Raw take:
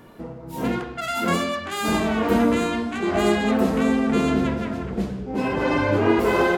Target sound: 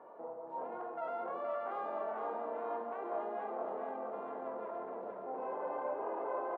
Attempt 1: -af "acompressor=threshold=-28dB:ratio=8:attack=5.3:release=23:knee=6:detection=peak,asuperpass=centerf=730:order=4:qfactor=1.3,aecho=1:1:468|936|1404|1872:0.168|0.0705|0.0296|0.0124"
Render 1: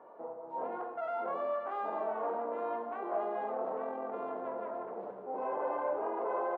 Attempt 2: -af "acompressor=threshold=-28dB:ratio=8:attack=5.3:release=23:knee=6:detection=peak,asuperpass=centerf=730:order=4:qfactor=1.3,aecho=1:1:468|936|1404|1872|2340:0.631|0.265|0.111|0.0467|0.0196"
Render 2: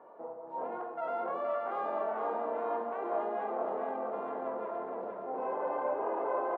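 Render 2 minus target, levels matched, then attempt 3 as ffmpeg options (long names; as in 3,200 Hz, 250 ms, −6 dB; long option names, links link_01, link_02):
downward compressor: peak gain reduction −5 dB
-af "acompressor=threshold=-34dB:ratio=8:attack=5.3:release=23:knee=6:detection=peak,asuperpass=centerf=730:order=4:qfactor=1.3,aecho=1:1:468|936|1404|1872|2340:0.631|0.265|0.111|0.0467|0.0196"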